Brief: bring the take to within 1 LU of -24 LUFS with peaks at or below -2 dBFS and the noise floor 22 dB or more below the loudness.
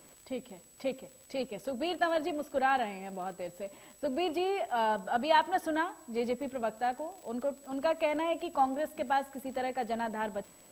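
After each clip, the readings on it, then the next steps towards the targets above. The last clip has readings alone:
tick rate 54 per s; steady tone 7.9 kHz; tone level -58 dBFS; loudness -33.0 LUFS; peak level -13.0 dBFS; loudness target -24.0 LUFS
-> de-click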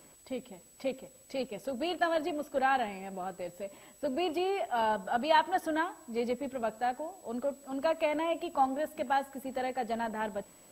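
tick rate 0.28 per s; steady tone 7.9 kHz; tone level -58 dBFS
-> band-stop 7.9 kHz, Q 30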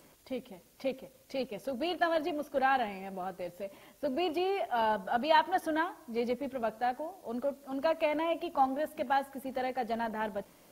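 steady tone not found; loudness -33.0 LUFS; peak level -13.0 dBFS; loudness target -24.0 LUFS
-> trim +9 dB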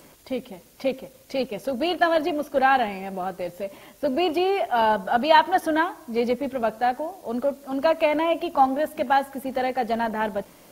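loudness -24.0 LUFS; peak level -4.0 dBFS; noise floor -52 dBFS

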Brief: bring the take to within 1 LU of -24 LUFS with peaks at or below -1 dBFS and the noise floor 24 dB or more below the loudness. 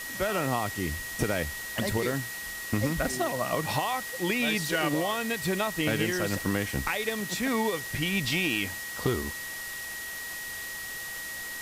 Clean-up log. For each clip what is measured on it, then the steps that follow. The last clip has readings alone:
steady tone 1.9 kHz; tone level -37 dBFS; noise floor -38 dBFS; noise floor target -54 dBFS; loudness -29.5 LUFS; peak level -15.0 dBFS; loudness target -24.0 LUFS
-> band-stop 1.9 kHz, Q 30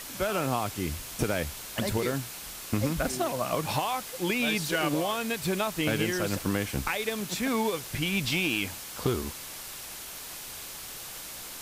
steady tone not found; noise floor -41 dBFS; noise floor target -54 dBFS
-> noise print and reduce 13 dB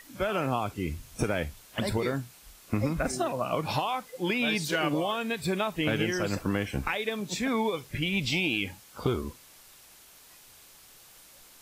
noise floor -54 dBFS; loudness -30.0 LUFS; peak level -16.0 dBFS; loudness target -24.0 LUFS
-> trim +6 dB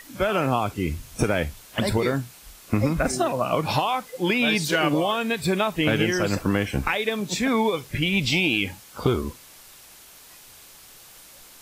loudness -24.0 LUFS; peak level -10.0 dBFS; noise floor -48 dBFS

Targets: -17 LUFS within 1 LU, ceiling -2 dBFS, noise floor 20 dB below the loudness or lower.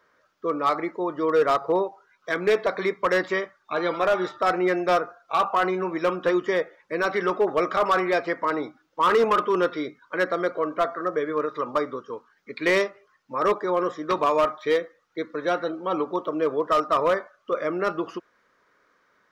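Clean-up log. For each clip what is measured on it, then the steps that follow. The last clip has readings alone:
clipped samples 0.9%; clipping level -14.5 dBFS; loudness -24.5 LUFS; peak level -14.5 dBFS; loudness target -17.0 LUFS
-> clip repair -14.5 dBFS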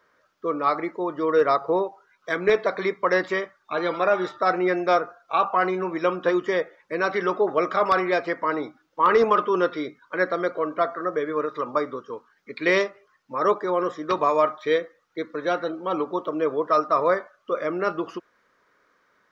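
clipped samples 0.0%; loudness -24.0 LUFS; peak level -6.5 dBFS; loudness target -17.0 LUFS
-> trim +7 dB; peak limiter -2 dBFS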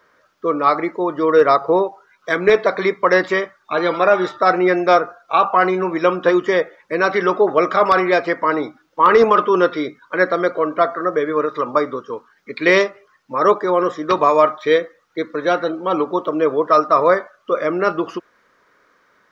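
loudness -17.0 LUFS; peak level -2.0 dBFS; noise floor -60 dBFS

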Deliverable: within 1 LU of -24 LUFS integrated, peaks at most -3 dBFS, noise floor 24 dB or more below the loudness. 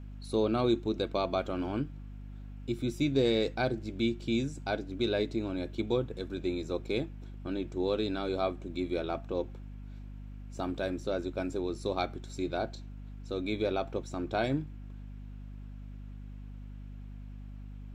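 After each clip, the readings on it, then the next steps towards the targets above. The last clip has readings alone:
hum 50 Hz; highest harmonic 250 Hz; hum level -41 dBFS; loudness -33.0 LUFS; peak level -15.0 dBFS; loudness target -24.0 LUFS
-> hum notches 50/100/150/200/250 Hz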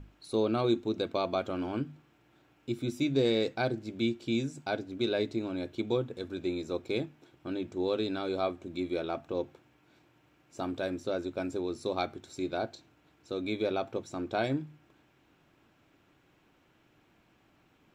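hum not found; loudness -33.0 LUFS; peak level -15.5 dBFS; loudness target -24.0 LUFS
-> trim +9 dB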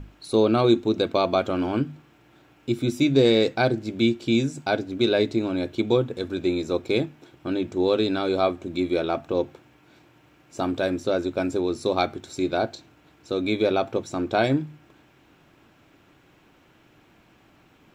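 loudness -24.0 LUFS; peak level -6.5 dBFS; noise floor -58 dBFS

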